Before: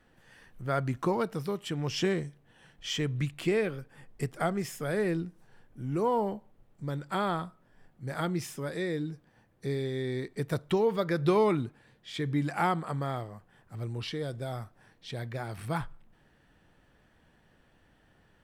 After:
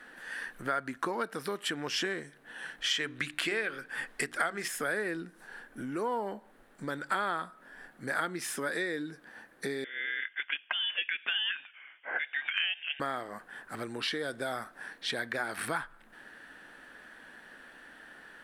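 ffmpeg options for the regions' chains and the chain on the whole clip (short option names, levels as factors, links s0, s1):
-filter_complex "[0:a]asettb=1/sr,asplit=3[s0][s1][s2];[s0]atrim=end=2.914[s3];[s1]atrim=start=2.91:end=4.68,asetpts=PTS-STARTPTS,afade=t=in:d=0.004:c=qsin,afade=t=out:st=1.766:d=0.004:c=qsin,equalizer=f=3200:w=0.41:g=6.5,bandreject=f=60:t=h:w=6,bandreject=f=120:t=h:w=6,bandreject=f=180:t=h:w=6,bandreject=f=240:t=h:w=6,bandreject=f=300:t=h:w=6,bandreject=f=360:t=h:w=6[s4];[s2]atrim=start=4.676[s5];[s3][s4]acrossfade=d=0.004:c1=hsin:c2=qsin[s6];[s6][s5]acrossfade=d=0.004:c1=qsin:c2=hsin,asettb=1/sr,asplit=3[s7][s8][s9];[s7]atrim=end=9.844[s10];[s8]atrim=start=9.84:end=13,asetpts=PTS-STARTPTS,afade=t=in:d=0.004:c=qsin,afade=t=out:st=3.156:d=0.004:c=qsin,highpass=f=820:w=0.5412,highpass=f=820:w=1.3066,highshelf=f=2600:g=-7,lowpass=f=3300:t=q:w=0.5098,lowpass=f=3300:t=q:w=0.6013,lowpass=f=3300:t=q:w=0.9,lowpass=f=3300:t=q:w=2.563,afreqshift=-3900[s11];[s9]atrim=start=12.996[s12];[s10][s11]acrossfade=d=0.004:c1=hsin:c2=qsin[s13];[s13][s12]acrossfade=d=0.004:c1=qsin:c2=hsin,equalizer=f=100:t=o:w=0.67:g=-10,equalizer=f=250:t=o:w=0.67:g=7,equalizer=f=1600:t=o:w=0.67:g=12,equalizer=f=4000:t=o:w=0.67:g=4,equalizer=f=10000:t=o:w=0.67:g=9,acompressor=threshold=0.0126:ratio=6,bass=f=250:g=-14,treble=f=4000:g=-2,volume=2.82"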